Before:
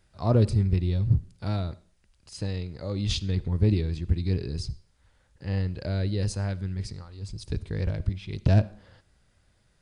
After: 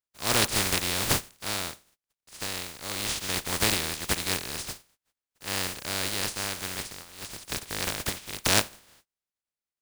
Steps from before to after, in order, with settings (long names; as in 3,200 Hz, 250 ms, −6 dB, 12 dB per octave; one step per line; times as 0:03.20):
compressing power law on the bin magnitudes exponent 0.19
noise gate −57 dBFS, range −29 dB
level −3.5 dB